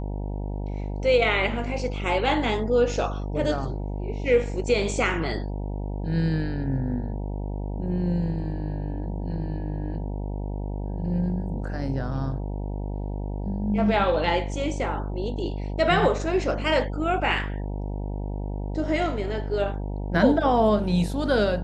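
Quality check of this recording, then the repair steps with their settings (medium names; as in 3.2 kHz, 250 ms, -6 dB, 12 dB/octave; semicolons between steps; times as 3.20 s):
buzz 50 Hz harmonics 19 -30 dBFS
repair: de-hum 50 Hz, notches 19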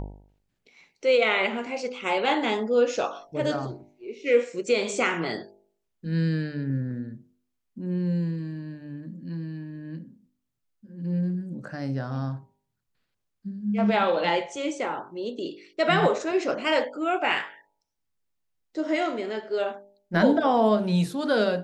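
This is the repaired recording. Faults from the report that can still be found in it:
nothing left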